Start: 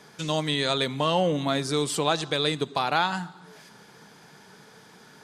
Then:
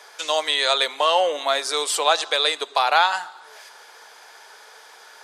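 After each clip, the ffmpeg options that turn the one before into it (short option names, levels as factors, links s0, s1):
-af "highpass=f=540:w=0.5412,highpass=f=540:w=1.3066,volume=2.24"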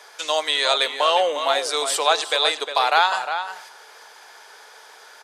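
-filter_complex "[0:a]asplit=2[s0][s1];[s1]adelay=355.7,volume=0.398,highshelf=f=4000:g=-8[s2];[s0][s2]amix=inputs=2:normalize=0"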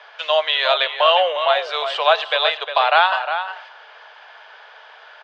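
-af "highpass=f=500:w=0.5412,highpass=f=500:w=1.3066,equalizer=f=630:t=q:w=4:g=7,equalizer=f=1100:t=q:w=4:g=3,equalizer=f=1600:t=q:w=4:g=4,equalizer=f=2900:t=q:w=4:g=8,lowpass=f=3700:w=0.5412,lowpass=f=3700:w=1.3066"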